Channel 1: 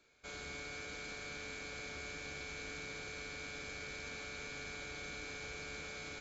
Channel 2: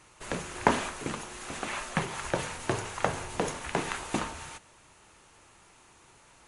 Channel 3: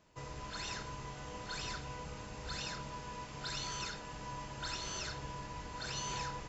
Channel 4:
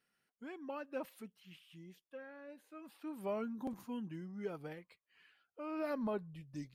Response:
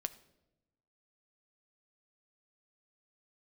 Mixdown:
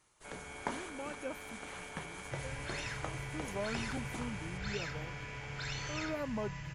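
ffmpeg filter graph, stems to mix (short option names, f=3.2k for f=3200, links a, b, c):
-filter_complex "[0:a]afwtdn=0.00355,equalizer=f=880:w=2.5:g=10.5,volume=-2.5dB[a];[1:a]highshelf=f=5.6k:g=6,bandreject=f=2.6k:w=12,volume=-15dB[b];[2:a]equalizer=f=125:t=o:w=1:g=9,equalizer=f=250:t=o:w=1:g=-10,equalizer=f=500:t=o:w=1:g=-6,equalizer=f=1k:t=o:w=1:g=-8,equalizer=f=2k:t=o:w=1:g=9,equalizer=f=4k:t=o:w=1:g=-5,equalizer=f=8k:t=o:w=1:g=-4,adelay=2150,volume=0.5dB[c];[3:a]adelay=300,volume=-0.5dB[d];[a][b][c][d]amix=inputs=4:normalize=0"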